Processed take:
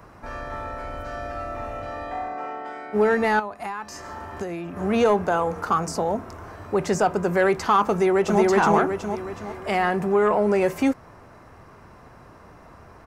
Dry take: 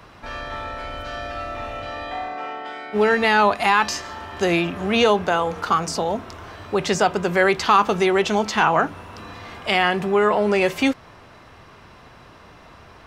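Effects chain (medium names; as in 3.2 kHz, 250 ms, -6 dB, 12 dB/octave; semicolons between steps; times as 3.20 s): peaking EQ 3.4 kHz -14.5 dB 1.2 oct; 3.39–4.77 s: compression 12:1, threshold -28 dBFS, peak gain reduction 15.5 dB; saturation -8.5 dBFS, distortion -22 dB; 7.91–8.41 s: echo throw 370 ms, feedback 45%, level 0 dB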